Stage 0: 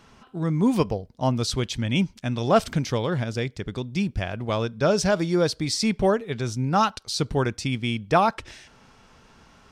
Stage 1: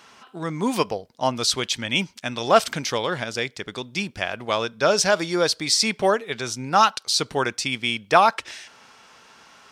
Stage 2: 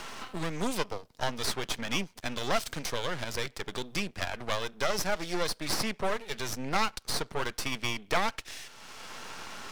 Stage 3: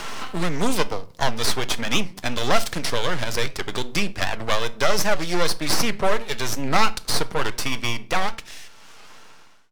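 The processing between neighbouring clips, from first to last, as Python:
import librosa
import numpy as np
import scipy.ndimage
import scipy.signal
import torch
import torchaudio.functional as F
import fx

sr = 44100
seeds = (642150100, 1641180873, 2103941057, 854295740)

y1 = fx.highpass(x, sr, hz=930.0, slope=6)
y1 = y1 * librosa.db_to_amplitude(7.5)
y2 = np.maximum(y1, 0.0)
y2 = fx.band_squash(y2, sr, depth_pct=70)
y2 = y2 * librosa.db_to_amplitude(-4.5)
y3 = fx.fade_out_tail(y2, sr, length_s=2.44)
y3 = fx.room_shoebox(y3, sr, seeds[0], volume_m3=400.0, walls='furnished', distance_m=0.41)
y3 = fx.record_warp(y3, sr, rpm=78.0, depth_cents=160.0)
y3 = y3 * librosa.db_to_amplitude(8.5)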